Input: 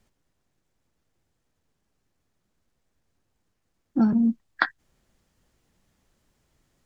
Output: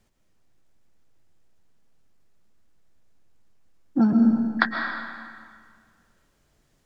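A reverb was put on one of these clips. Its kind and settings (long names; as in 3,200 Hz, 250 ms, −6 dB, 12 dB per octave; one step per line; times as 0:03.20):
comb and all-pass reverb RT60 1.9 s, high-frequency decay 0.85×, pre-delay 90 ms, DRR 2.5 dB
level +1 dB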